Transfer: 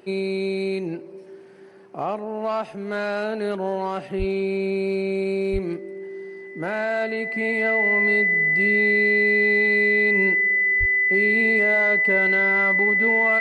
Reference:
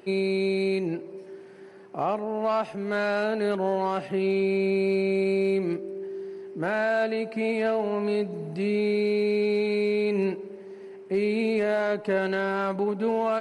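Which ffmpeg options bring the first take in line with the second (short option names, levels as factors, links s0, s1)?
-filter_complex "[0:a]bandreject=f=2000:w=30,asplit=3[s0][s1][s2];[s0]afade=t=out:st=4.18:d=0.02[s3];[s1]highpass=f=140:w=0.5412,highpass=f=140:w=1.3066,afade=t=in:st=4.18:d=0.02,afade=t=out:st=4.3:d=0.02[s4];[s2]afade=t=in:st=4.3:d=0.02[s5];[s3][s4][s5]amix=inputs=3:normalize=0,asplit=3[s6][s7][s8];[s6]afade=t=out:st=5.52:d=0.02[s9];[s7]highpass=f=140:w=0.5412,highpass=f=140:w=1.3066,afade=t=in:st=5.52:d=0.02,afade=t=out:st=5.64:d=0.02[s10];[s8]afade=t=in:st=5.64:d=0.02[s11];[s9][s10][s11]amix=inputs=3:normalize=0,asplit=3[s12][s13][s14];[s12]afade=t=out:st=10.79:d=0.02[s15];[s13]highpass=f=140:w=0.5412,highpass=f=140:w=1.3066,afade=t=in:st=10.79:d=0.02,afade=t=out:st=10.91:d=0.02[s16];[s14]afade=t=in:st=10.91:d=0.02[s17];[s15][s16][s17]amix=inputs=3:normalize=0"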